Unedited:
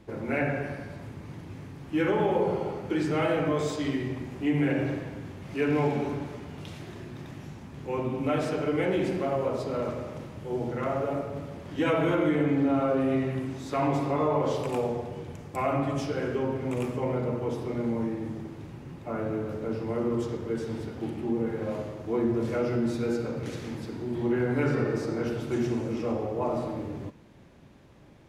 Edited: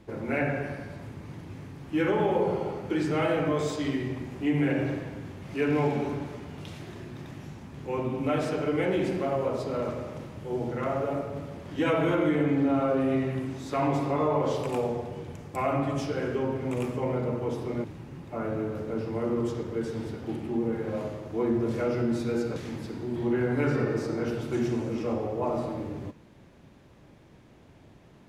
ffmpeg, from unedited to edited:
-filter_complex "[0:a]asplit=3[s0][s1][s2];[s0]atrim=end=17.842[s3];[s1]atrim=start=18.578:end=23.302[s4];[s2]atrim=start=23.548[s5];[s3][s4]acrossfade=d=0.004:c1=hsin:c2=hsin[s6];[s6][s5]acrossfade=d=0.004:c1=hsin:c2=hsin"

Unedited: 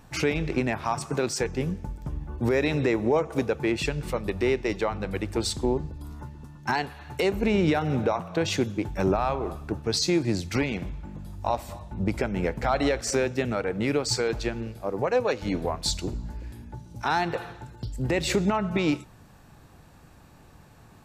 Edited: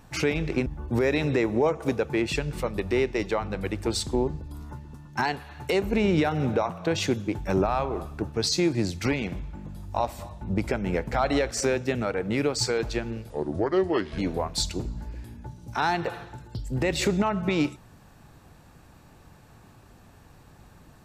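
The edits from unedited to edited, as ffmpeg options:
-filter_complex "[0:a]asplit=4[s0][s1][s2][s3];[s0]atrim=end=0.662[s4];[s1]atrim=start=2.158:end=14.804[s5];[s2]atrim=start=14.8:end=15.46,asetpts=PTS-STARTPTS,asetrate=33075,aresample=44100[s6];[s3]atrim=start=15.456[s7];[s4][s5]acrossfade=d=0.004:c1=hsin:c2=hsin[s8];[s8][s6]acrossfade=d=0.004:c1=hsin:c2=hsin[s9];[s9][s7]acrossfade=d=0.004:c1=hsin:c2=hsin"

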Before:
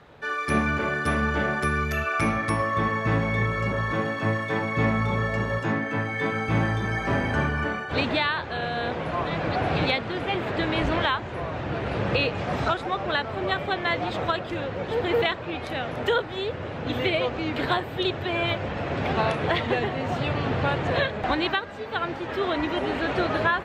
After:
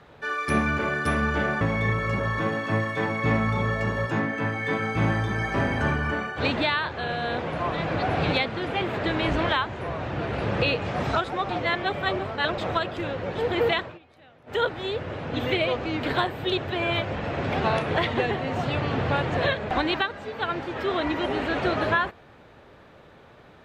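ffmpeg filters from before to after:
-filter_complex "[0:a]asplit=6[s0][s1][s2][s3][s4][s5];[s0]atrim=end=1.612[s6];[s1]atrim=start=3.138:end=13.022[s7];[s2]atrim=start=13.018:end=14.112,asetpts=PTS-STARTPTS,areverse[s8];[s3]atrim=start=14.108:end=15.52,asetpts=PTS-STARTPTS,afade=t=out:st=1.242:d=0.17:silence=0.0668344[s9];[s4]atrim=start=15.52:end=15.99,asetpts=PTS-STARTPTS,volume=0.0668[s10];[s5]atrim=start=15.99,asetpts=PTS-STARTPTS,afade=t=in:d=0.17:silence=0.0668344[s11];[s6][s7]acrossfade=d=0.004:c1=hsin:c2=hsin[s12];[s12][s8]acrossfade=d=0.004:c1=hsin:c2=hsin[s13];[s9][s10][s11]concat=n=3:v=0:a=1[s14];[s13][s14]acrossfade=d=0.004:c1=hsin:c2=hsin"

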